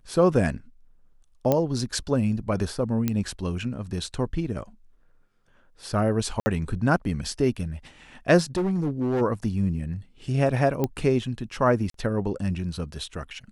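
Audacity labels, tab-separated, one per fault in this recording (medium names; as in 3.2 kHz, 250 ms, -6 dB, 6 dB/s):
1.520000	1.520000	pop -9 dBFS
3.080000	3.080000	pop -11 dBFS
6.400000	6.460000	dropout 60 ms
8.560000	9.220000	clipped -21 dBFS
10.840000	10.840000	pop -12 dBFS
11.900000	11.940000	dropout 43 ms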